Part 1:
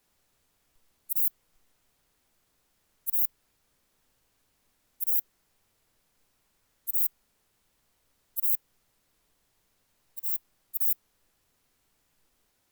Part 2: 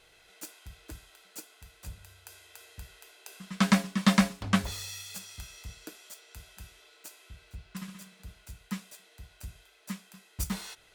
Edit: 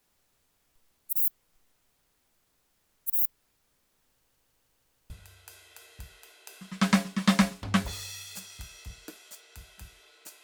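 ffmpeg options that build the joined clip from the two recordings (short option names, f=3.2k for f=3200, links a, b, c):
-filter_complex "[0:a]apad=whole_dur=10.43,atrim=end=10.43,asplit=6[a][b][c][d][e][f];[a]atrim=end=4.302[g];[b]atrim=start=4.138:end=4.302[h];[c]atrim=start=4.138:end=4.302[i];[d]atrim=start=4.138:end=4.302[j];[e]atrim=start=4.138:end=4.302[k];[f]atrim=start=4.138:end=4.302[l];[1:a]atrim=start=1.888:end=7.22[m];[g][h]acrossfade=d=0.004:c1=hsin:c2=hsin[n];[n][i]acrossfade=d=0.004:c1=hsin:c2=hsin[o];[o][j]acrossfade=d=0.004:c1=hsin:c2=hsin[p];[p][k]acrossfade=d=0.004:c1=hsin:c2=hsin[q];[q][l]acrossfade=d=0.004:c1=hsin:c2=hsin[r];[r][m]acrossfade=d=0.004:c1=hsin:c2=hsin"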